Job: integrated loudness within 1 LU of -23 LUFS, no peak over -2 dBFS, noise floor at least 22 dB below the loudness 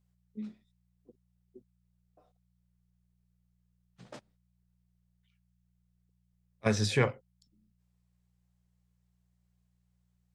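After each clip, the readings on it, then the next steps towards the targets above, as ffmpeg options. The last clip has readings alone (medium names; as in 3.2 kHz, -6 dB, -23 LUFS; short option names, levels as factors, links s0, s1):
hum 60 Hz; highest harmonic 180 Hz; hum level -70 dBFS; loudness -31.5 LUFS; peak level -13.0 dBFS; loudness target -23.0 LUFS
-> -af "bandreject=f=60:t=h:w=4,bandreject=f=120:t=h:w=4,bandreject=f=180:t=h:w=4"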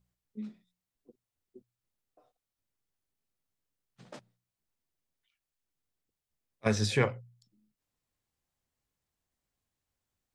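hum not found; loudness -32.0 LUFS; peak level -13.0 dBFS; loudness target -23.0 LUFS
-> -af "volume=2.82"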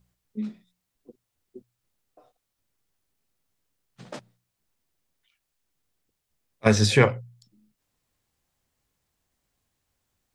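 loudness -23.0 LUFS; peak level -4.0 dBFS; noise floor -81 dBFS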